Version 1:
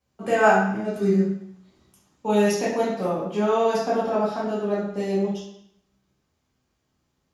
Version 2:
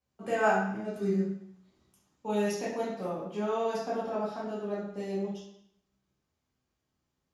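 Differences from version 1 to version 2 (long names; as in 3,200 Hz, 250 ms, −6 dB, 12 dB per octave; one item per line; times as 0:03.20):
first voice −8.5 dB
second voice −9.5 dB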